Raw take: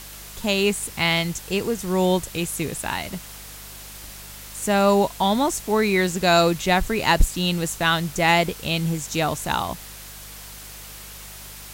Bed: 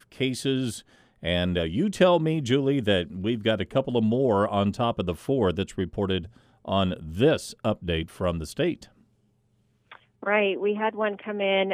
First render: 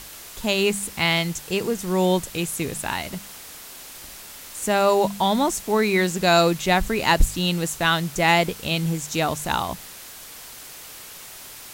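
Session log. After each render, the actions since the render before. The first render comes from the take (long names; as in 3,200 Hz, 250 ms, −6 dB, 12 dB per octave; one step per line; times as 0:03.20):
hum removal 50 Hz, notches 4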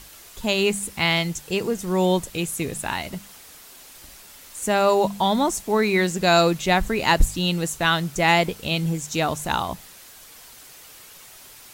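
broadband denoise 6 dB, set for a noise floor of −41 dBFS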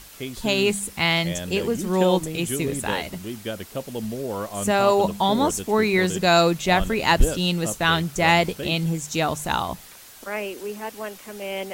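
mix in bed −7 dB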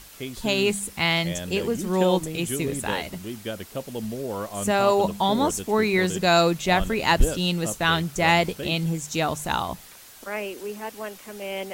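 level −1.5 dB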